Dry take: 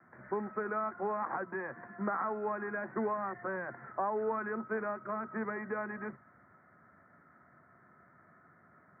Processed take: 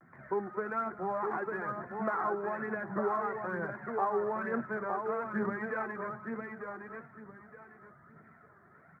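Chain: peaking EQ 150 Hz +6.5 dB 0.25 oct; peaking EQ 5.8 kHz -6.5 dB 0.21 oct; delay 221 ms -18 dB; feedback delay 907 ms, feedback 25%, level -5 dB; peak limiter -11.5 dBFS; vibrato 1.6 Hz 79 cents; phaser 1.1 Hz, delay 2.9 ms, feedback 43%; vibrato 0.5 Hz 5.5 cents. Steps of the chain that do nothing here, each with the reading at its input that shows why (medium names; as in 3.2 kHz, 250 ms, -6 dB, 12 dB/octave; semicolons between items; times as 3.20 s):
peaking EQ 5.8 kHz: input has nothing above 2 kHz; peak limiter -11.5 dBFS: peak at its input -19.5 dBFS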